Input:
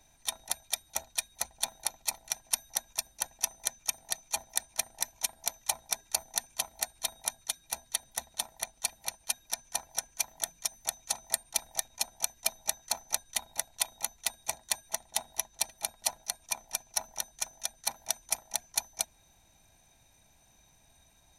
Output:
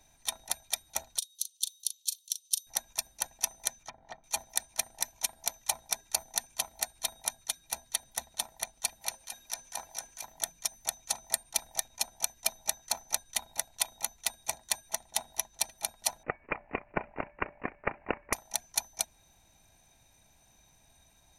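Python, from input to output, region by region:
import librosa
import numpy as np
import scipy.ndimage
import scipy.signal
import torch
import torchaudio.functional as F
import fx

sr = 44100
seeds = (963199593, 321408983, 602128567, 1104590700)

y = fx.chain(x, sr, fx.steep_highpass(hz=3000.0, slope=72),
    fx.doubler(ms=38.0, db=-10.5), at=(1.18, 2.67))
y = fx.chain(y, sr, fx.env_lowpass_down(base_hz=1500.0, full_db=-34.0),
    fx.high_shelf(hz=5300.0, db=-9.0),
    fx.notch(hz=2600.0, q=8.7), at=(3.83, 4.24))
y = fx.chain(y, sr, fx.low_shelf(hz=280.0, db=-6.5),
    fx.hum_notches(base_hz=60, count=9),
    fx.over_compress(threshold_db=-33.0, ratio=-0.5), at=(9.01, 10.26))
y = fx.chain(y, sr, fx.echo_feedback(ms=258, feedback_pct=26, wet_db=-13.5),
    fx.resample_bad(factor=8, down='none', up='filtered'), at=(16.23, 18.33))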